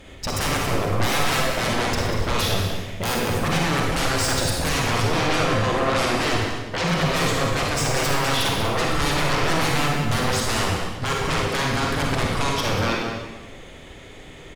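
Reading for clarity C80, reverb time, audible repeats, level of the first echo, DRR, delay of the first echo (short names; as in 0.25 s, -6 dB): 1.5 dB, 1.2 s, 1, -8.5 dB, -2.5 dB, 0.19 s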